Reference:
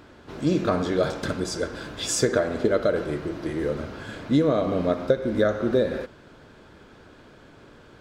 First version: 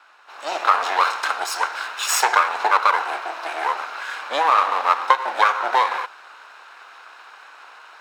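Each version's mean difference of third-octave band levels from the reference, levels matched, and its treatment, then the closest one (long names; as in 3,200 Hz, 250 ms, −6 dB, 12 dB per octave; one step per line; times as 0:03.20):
13.0 dB: lower of the sound and its delayed copy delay 0.74 ms
high-pass filter 740 Hz 24 dB per octave
high-shelf EQ 3,600 Hz −8.5 dB
automatic gain control gain up to 9 dB
level +4.5 dB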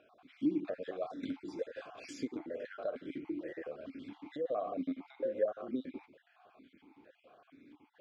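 9.5 dB: time-frequency cells dropped at random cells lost 34%
notch filter 930 Hz, Q 18
downward compressor 2.5 to 1, threshold −28 dBFS, peak gain reduction 8.5 dB
formant filter that steps through the vowels 4.4 Hz
level +2 dB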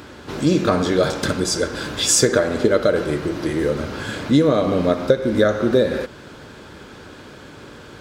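3.0 dB: high-shelf EQ 3,800 Hz +6.5 dB
notch filter 670 Hz, Q 15
in parallel at −1 dB: downward compressor, threshold −34 dBFS, peak gain reduction 18 dB
on the sum: high-pass filter 44 Hz
level +4 dB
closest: third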